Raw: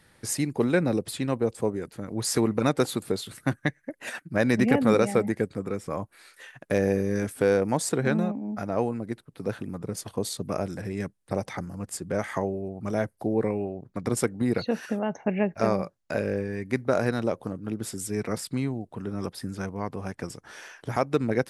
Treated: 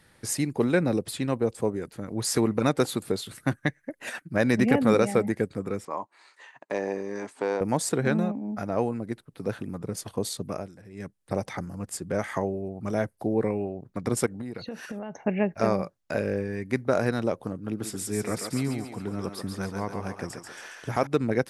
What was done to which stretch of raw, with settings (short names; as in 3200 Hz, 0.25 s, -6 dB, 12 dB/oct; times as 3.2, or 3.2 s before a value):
5.85–7.61 speaker cabinet 380–6800 Hz, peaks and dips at 500 Hz -6 dB, 940 Hz +9 dB, 1500 Hz -7 dB, 2400 Hz -4 dB, 3400 Hz -6 dB, 5500 Hz -8 dB
10.27–11.36 dip -14.5 dB, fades 0.45 s equal-power
14.26–15.19 compressor 12:1, threshold -31 dBFS
17.54–21.07 thinning echo 0.138 s, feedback 54%, high-pass 460 Hz, level -4 dB